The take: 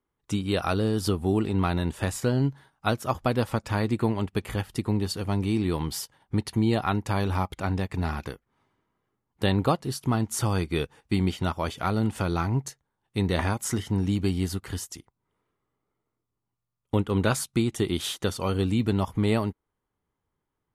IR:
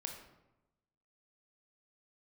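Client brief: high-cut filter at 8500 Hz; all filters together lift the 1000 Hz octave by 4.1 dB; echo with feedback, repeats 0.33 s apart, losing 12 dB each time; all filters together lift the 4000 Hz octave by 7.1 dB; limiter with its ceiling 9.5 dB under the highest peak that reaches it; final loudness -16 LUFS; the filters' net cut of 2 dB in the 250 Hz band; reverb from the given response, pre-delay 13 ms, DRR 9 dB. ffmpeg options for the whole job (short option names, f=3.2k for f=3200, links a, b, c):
-filter_complex "[0:a]lowpass=8.5k,equalizer=f=250:t=o:g=-3,equalizer=f=1k:t=o:g=5,equalizer=f=4k:t=o:g=8.5,alimiter=limit=-15dB:level=0:latency=1,aecho=1:1:330|660|990:0.251|0.0628|0.0157,asplit=2[a][b];[1:a]atrim=start_sample=2205,adelay=13[c];[b][c]afir=irnorm=-1:irlink=0,volume=-7dB[d];[a][d]amix=inputs=2:normalize=0,volume=11.5dB"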